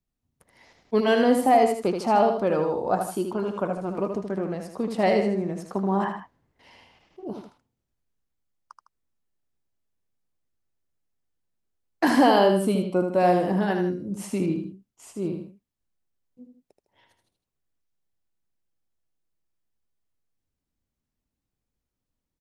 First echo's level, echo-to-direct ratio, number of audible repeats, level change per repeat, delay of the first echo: -6.0 dB, -5.5 dB, 2, -7.5 dB, 78 ms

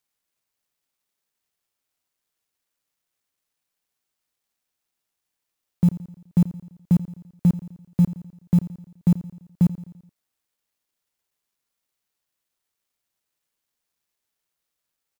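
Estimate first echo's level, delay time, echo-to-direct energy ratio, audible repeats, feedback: -16.0 dB, 85 ms, -14.5 dB, 4, 54%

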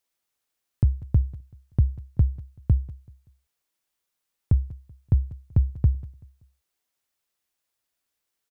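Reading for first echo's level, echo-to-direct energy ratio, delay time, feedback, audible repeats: -20.5 dB, -20.0 dB, 191 ms, 35%, 2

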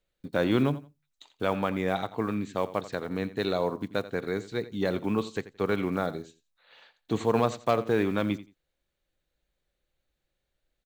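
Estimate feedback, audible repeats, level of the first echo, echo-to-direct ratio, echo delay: 19%, 2, -16.0 dB, -16.0 dB, 86 ms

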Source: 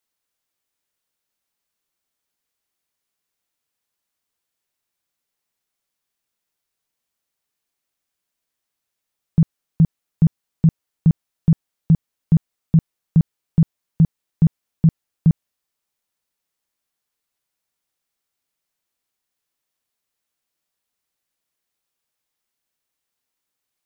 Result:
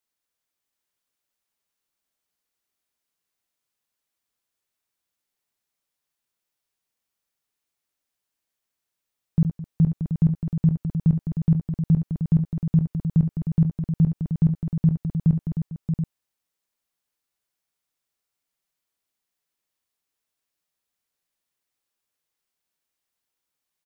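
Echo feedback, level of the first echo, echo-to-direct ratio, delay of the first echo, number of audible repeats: no regular repeats, -9.5 dB, -2.5 dB, 69 ms, 5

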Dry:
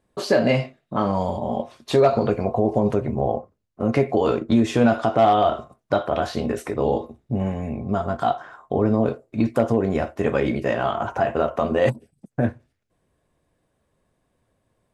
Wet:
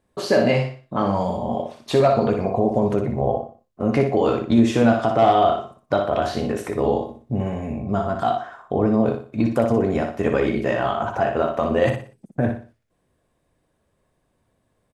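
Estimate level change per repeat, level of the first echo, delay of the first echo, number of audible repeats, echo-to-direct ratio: -9.5 dB, -6.0 dB, 60 ms, 4, -5.5 dB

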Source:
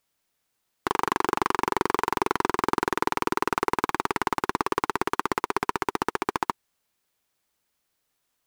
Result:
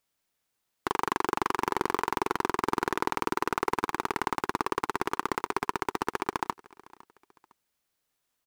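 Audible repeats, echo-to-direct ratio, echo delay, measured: 2, -22.0 dB, 507 ms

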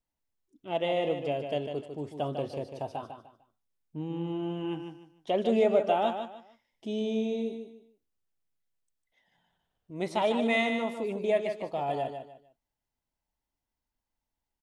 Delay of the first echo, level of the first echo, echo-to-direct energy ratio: 150 ms, -7.5 dB, -7.0 dB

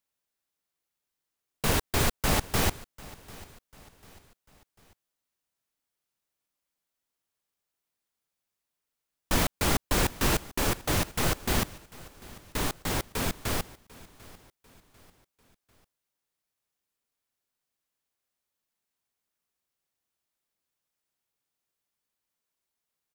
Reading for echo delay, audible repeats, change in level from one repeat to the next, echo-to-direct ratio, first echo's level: 745 ms, 2, -7.5 dB, -19.5 dB, -20.5 dB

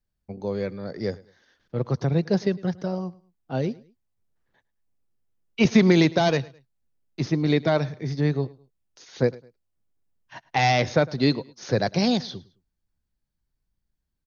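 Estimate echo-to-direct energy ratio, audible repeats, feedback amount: -21.5 dB, 2, 32%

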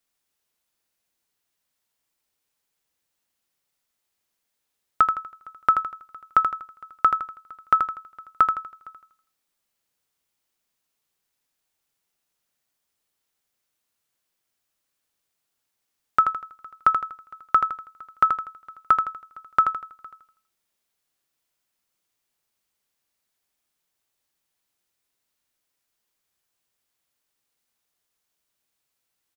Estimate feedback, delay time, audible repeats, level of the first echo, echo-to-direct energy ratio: 39%, 81 ms, 4, -6.5 dB, -6.0 dB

